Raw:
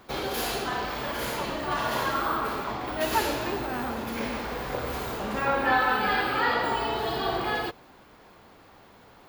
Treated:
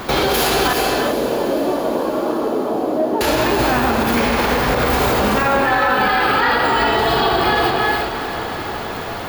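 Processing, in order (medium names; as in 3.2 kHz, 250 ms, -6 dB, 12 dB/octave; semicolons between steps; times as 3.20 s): compression 2.5:1, threshold -40 dBFS, peak gain reduction 14 dB; 0.73–3.21 s: Butterworth band-pass 380 Hz, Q 0.97; echo that smears into a reverb 704 ms, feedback 56%, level -14.5 dB; gated-style reverb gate 410 ms rising, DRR 4.5 dB; loudness maximiser +30 dB; trim -6 dB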